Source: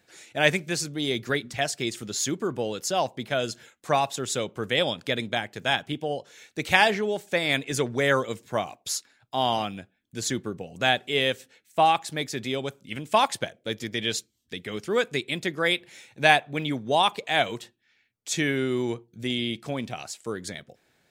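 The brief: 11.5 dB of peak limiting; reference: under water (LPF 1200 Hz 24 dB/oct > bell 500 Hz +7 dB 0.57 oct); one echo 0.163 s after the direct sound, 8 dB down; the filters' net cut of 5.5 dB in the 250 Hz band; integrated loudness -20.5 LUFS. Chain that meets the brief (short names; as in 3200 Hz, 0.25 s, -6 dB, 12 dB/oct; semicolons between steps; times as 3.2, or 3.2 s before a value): bell 250 Hz -9 dB; limiter -15 dBFS; LPF 1200 Hz 24 dB/oct; bell 500 Hz +7 dB 0.57 oct; echo 0.163 s -8 dB; gain +9.5 dB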